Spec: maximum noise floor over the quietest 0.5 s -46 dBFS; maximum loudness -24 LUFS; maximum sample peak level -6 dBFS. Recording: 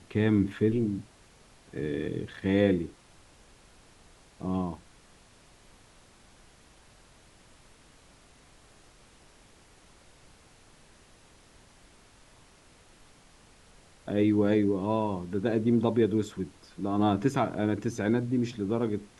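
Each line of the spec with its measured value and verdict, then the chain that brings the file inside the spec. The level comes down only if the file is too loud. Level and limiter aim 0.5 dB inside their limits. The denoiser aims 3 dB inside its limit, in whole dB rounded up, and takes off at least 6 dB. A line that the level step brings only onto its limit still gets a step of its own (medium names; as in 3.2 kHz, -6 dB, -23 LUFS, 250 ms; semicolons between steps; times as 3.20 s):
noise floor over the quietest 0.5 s -57 dBFS: pass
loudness -28.5 LUFS: pass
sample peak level -10.5 dBFS: pass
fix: none needed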